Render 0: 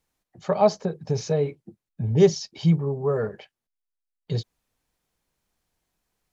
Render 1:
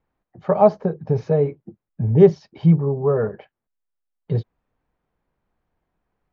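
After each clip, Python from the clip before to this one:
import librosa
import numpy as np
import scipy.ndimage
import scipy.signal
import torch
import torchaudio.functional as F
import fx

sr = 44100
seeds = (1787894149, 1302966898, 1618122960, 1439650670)

y = scipy.signal.sosfilt(scipy.signal.butter(2, 1500.0, 'lowpass', fs=sr, output='sos'), x)
y = y * librosa.db_to_amplitude(5.0)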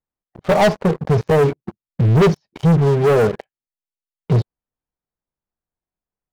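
y = fx.leveller(x, sr, passes=5)
y = y * librosa.db_to_amplitude(-7.5)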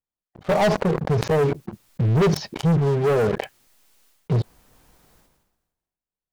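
y = fx.sustainer(x, sr, db_per_s=48.0)
y = y * librosa.db_to_amplitude(-5.5)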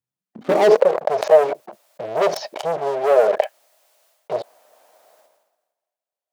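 y = fx.filter_sweep_highpass(x, sr, from_hz=110.0, to_hz=620.0, start_s=0.01, end_s=0.91, q=6.7)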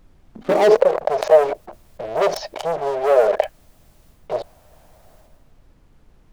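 y = fx.dmg_noise_colour(x, sr, seeds[0], colour='brown', level_db=-50.0)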